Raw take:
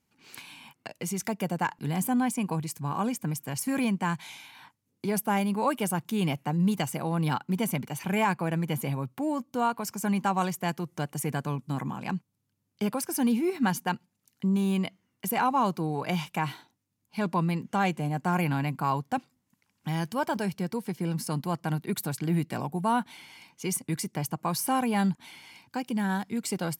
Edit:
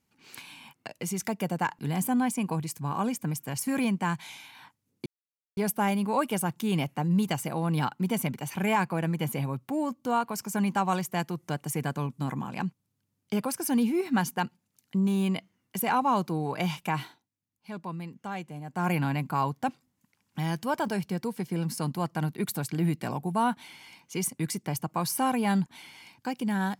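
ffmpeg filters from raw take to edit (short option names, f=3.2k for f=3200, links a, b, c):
-filter_complex "[0:a]asplit=4[a][b][c][d];[a]atrim=end=5.06,asetpts=PTS-STARTPTS,afade=t=out:st=5.056:d=0.004:c=hsin,apad=pad_dur=0.51[e];[b]atrim=start=5.06:end=16.73,asetpts=PTS-STARTPTS,afade=t=in:d=0.004:c=hsin,afade=t=out:st=11.46:d=0.21:silence=0.316228[f];[c]atrim=start=16.73:end=18.17,asetpts=PTS-STARTPTS,volume=-10dB[g];[d]atrim=start=18.17,asetpts=PTS-STARTPTS,afade=t=in:d=0.21:silence=0.316228[h];[e][f][g][h]concat=n=4:v=0:a=1"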